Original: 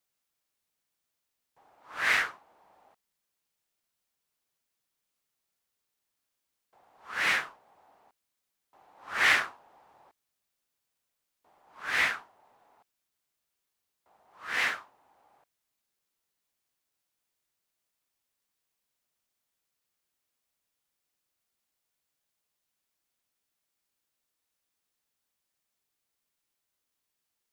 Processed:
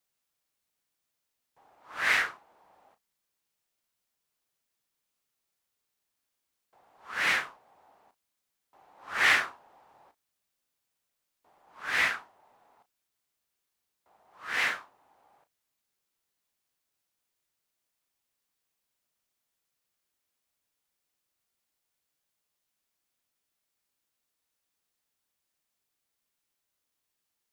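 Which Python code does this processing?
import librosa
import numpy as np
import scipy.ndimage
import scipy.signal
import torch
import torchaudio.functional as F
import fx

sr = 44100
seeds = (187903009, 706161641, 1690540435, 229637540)

y = fx.doubler(x, sr, ms=34.0, db=-12.5)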